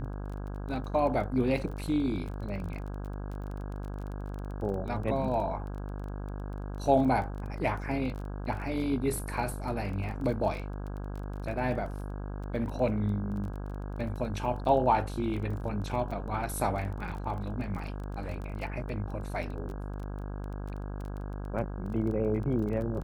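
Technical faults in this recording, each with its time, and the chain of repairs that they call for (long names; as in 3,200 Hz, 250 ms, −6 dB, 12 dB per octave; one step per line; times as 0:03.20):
mains buzz 50 Hz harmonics 33 −37 dBFS
surface crackle 21 per second −37 dBFS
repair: click removal
hum removal 50 Hz, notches 33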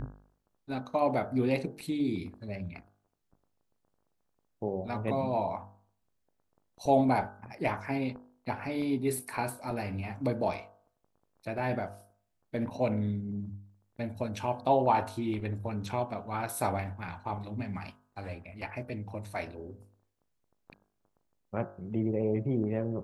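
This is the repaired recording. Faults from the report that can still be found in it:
none of them is left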